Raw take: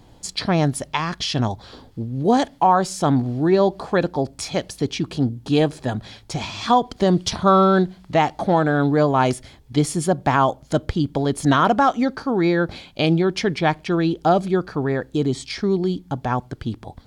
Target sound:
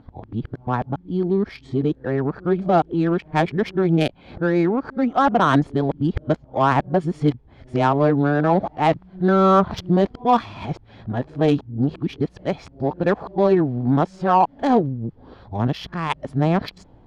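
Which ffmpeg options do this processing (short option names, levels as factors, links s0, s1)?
-af "areverse,adynamicsmooth=sensitivity=0.5:basefreq=1700"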